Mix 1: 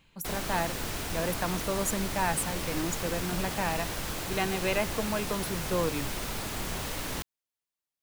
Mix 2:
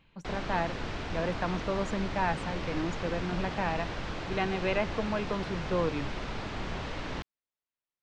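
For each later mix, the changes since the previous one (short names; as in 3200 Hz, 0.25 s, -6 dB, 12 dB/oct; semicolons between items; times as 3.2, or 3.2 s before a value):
master: add Gaussian blur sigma 2 samples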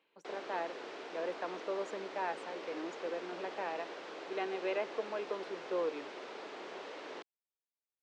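master: add ladder high-pass 340 Hz, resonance 45%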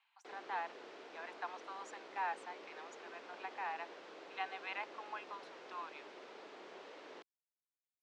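speech: add steep high-pass 720 Hz 96 dB/oct; background -7.5 dB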